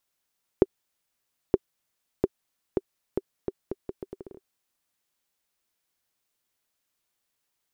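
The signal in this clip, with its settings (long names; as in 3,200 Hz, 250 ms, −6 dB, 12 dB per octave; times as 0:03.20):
bouncing ball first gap 0.92 s, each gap 0.76, 386 Hz, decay 36 ms −4.5 dBFS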